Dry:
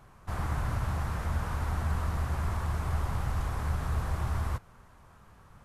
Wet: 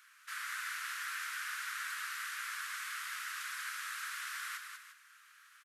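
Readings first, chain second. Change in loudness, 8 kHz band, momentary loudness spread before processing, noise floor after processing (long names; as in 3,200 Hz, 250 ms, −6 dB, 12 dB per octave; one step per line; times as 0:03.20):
−7.0 dB, +6.0 dB, 2 LU, −62 dBFS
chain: Butterworth high-pass 1,400 Hz 48 dB per octave
multi-tap delay 195/351 ms −6/−12.5 dB
level +5 dB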